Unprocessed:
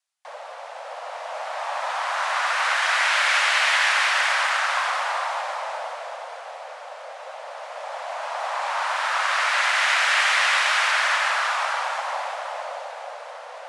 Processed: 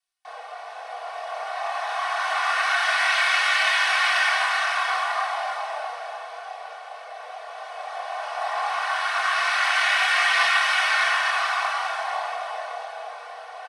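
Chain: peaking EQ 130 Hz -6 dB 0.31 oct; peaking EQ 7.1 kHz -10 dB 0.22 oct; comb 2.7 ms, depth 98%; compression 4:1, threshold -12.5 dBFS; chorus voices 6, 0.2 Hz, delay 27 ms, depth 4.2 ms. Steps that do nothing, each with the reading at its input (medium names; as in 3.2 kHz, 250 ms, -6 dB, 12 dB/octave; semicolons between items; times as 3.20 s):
peaking EQ 130 Hz: input has nothing below 430 Hz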